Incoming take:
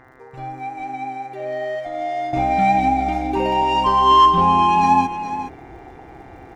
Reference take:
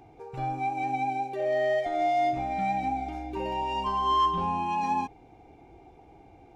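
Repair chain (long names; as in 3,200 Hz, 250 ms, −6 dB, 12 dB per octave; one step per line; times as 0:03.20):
click removal
hum removal 129.3 Hz, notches 16
echo removal 418 ms −10.5 dB
level correction −12 dB, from 0:02.33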